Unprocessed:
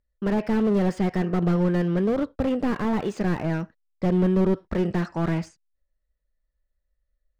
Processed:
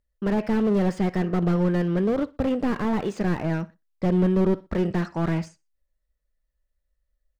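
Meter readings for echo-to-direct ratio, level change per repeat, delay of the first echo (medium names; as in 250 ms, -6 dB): -22.5 dB, -9.5 dB, 61 ms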